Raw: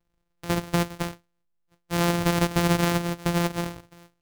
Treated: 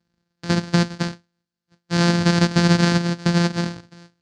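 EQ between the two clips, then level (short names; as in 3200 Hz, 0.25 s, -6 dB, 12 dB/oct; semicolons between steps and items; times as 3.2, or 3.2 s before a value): speaker cabinet 110–6600 Hz, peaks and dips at 220 Hz +10 dB, 1600 Hz +8 dB, 4500 Hz +8 dB; low shelf 310 Hz +9 dB; high shelf 4600 Hz +10.5 dB; -1.0 dB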